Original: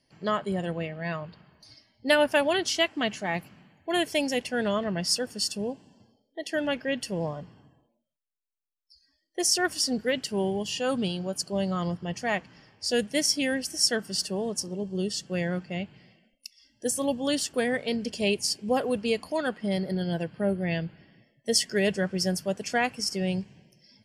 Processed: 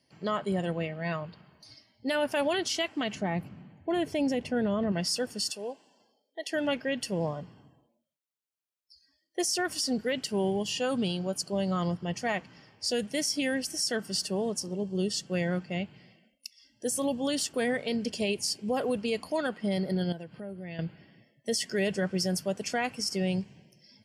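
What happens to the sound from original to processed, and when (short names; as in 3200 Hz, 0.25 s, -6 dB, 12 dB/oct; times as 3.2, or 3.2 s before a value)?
3.15–4.92 tilt -3 dB/oct
5.5–6.51 HPF 490 Hz
20.12–20.79 compressor 3:1, threshold -41 dBFS
whole clip: notch 1700 Hz, Q 25; limiter -20 dBFS; HPF 73 Hz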